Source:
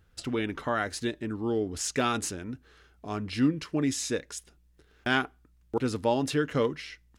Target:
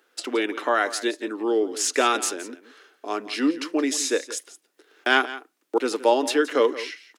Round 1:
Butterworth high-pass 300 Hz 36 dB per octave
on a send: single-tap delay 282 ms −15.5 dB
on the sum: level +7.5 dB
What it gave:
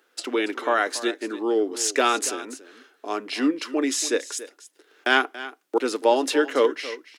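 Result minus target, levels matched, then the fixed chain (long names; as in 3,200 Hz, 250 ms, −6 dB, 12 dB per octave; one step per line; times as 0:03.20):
echo 111 ms late
Butterworth high-pass 300 Hz 36 dB per octave
on a send: single-tap delay 171 ms −15.5 dB
on the sum: level +7.5 dB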